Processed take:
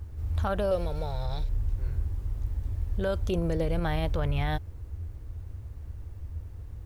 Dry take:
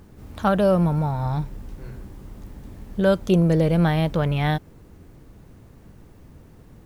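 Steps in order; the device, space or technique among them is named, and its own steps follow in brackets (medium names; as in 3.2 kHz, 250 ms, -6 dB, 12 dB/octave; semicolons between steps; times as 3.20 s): car stereo with a boomy subwoofer (resonant low shelf 120 Hz +12 dB, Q 3; peak limiter -14 dBFS, peak gain reduction 7 dB); 0.71–1.49 s: graphic EQ 125/250/500/1000/4000 Hz -7/-11/+9/-9/+12 dB; trim -5 dB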